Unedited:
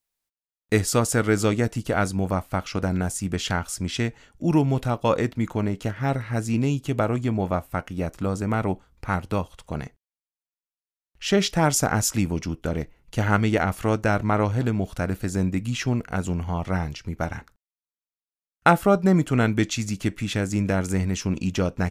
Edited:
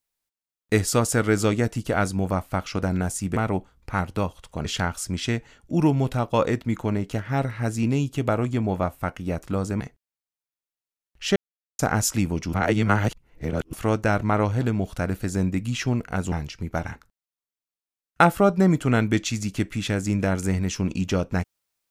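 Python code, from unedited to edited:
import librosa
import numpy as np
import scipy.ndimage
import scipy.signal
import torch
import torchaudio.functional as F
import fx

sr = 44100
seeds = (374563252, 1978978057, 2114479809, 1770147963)

y = fx.edit(x, sr, fx.move(start_s=8.51, length_s=1.29, to_s=3.36),
    fx.silence(start_s=11.36, length_s=0.43),
    fx.reverse_span(start_s=12.53, length_s=1.2),
    fx.cut(start_s=16.32, length_s=0.46), tone=tone)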